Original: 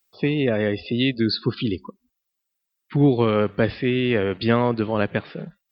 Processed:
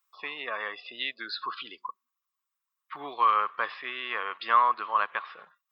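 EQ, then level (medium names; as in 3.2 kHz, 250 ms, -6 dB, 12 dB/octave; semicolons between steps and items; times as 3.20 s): resonant high-pass 1.1 kHz, resonance Q 9; band-stop 4.5 kHz, Q 11; -7.0 dB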